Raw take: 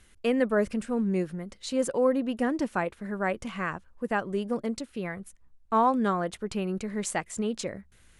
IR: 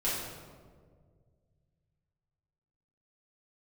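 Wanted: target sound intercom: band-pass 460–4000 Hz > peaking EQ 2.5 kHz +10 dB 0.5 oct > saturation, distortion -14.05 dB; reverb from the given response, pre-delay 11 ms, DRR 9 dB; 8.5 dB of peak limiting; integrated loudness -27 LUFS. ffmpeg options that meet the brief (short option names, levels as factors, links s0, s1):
-filter_complex "[0:a]alimiter=limit=0.0944:level=0:latency=1,asplit=2[s0][s1];[1:a]atrim=start_sample=2205,adelay=11[s2];[s1][s2]afir=irnorm=-1:irlink=0,volume=0.15[s3];[s0][s3]amix=inputs=2:normalize=0,highpass=460,lowpass=4000,equalizer=f=2500:t=o:w=0.5:g=10,asoftclip=threshold=0.0531,volume=2.82"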